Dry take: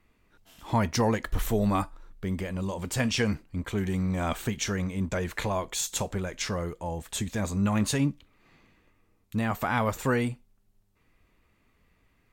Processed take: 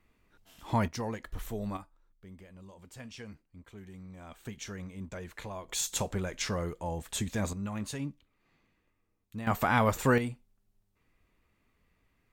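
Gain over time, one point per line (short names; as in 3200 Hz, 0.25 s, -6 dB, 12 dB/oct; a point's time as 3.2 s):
-3 dB
from 0.88 s -11 dB
from 1.77 s -19.5 dB
from 4.45 s -12 dB
from 5.69 s -2 dB
from 7.53 s -11 dB
from 9.47 s +1 dB
from 10.18 s -5.5 dB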